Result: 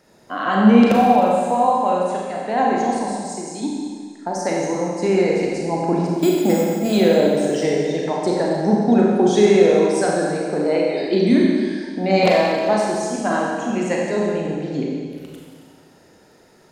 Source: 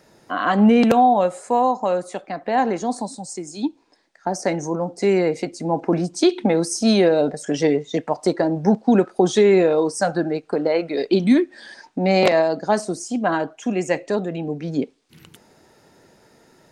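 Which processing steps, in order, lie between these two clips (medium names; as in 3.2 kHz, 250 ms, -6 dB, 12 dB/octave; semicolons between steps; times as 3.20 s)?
6.07–6.93 s: careless resampling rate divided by 6×, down filtered, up hold; Schroeder reverb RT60 1.9 s, combs from 30 ms, DRR -3 dB; trim -3 dB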